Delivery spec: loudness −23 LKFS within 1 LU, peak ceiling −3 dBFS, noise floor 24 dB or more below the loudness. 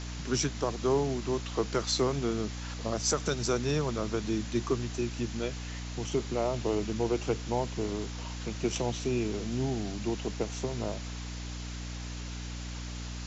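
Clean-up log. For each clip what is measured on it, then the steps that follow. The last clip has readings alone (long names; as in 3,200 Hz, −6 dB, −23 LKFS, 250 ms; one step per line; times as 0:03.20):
mains hum 60 Hz; hum harmonics up to 300 Hz; level of the hum −37 dBFS; background noise floor −39 dBFS; target noise floor −57 dBFS; integrated loudness −32.5 LKFS; sample peak −16.5 dBFS; target loudness −23.0 LKFS
→ mains-hum notches 60/120/180/240/300 Hz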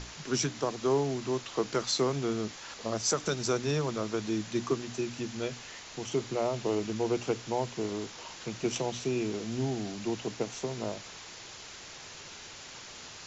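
mains hum none found; background noise floor −47 dBFS; target noise floor −57 dBFS
→ broadband denoise 10 dB, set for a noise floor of −47 dBFS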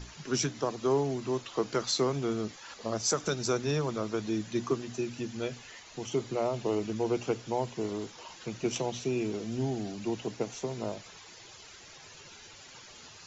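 background noise floor −51 dBFS; target noise floor −57 dBFS
→ broadband denoise 6 dB, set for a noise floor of −51 dBFS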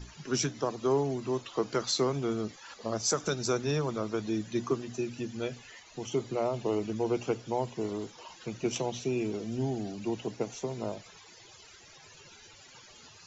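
background noise floor −54 dBFS; target noise floor −57 dBFS
→ broadband denoise 6 dB, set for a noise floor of −54 dBFS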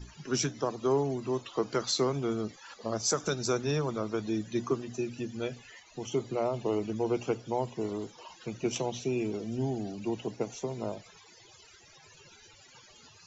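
background noise floor −57 dBFS; integrated loudness −32.5 LKFS; sample peak −18.0 dBFS; target loudness −23.0 LKFS
→ level +9.5 dB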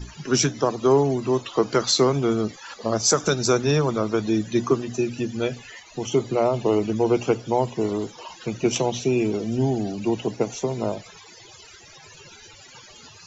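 integrated loudness −23.0 LKFS; sample peak −8.5 dBFS; background noise floor −47 dBFS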